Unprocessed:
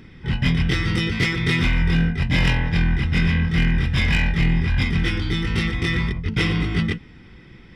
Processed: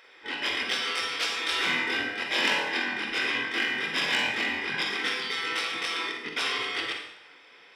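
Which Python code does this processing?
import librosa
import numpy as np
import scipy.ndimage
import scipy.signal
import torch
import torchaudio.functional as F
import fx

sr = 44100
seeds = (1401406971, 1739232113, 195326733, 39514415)

y = fx.spec_gate(x, sr, threshold_db=-15, keep='weak')
y = fx.highpass(y, sr, hz=410.0, slope=6)
y = fx.rev_schroeder(y, sr, rt60_s=0.77, comb_ms=38, drr_db=2.5)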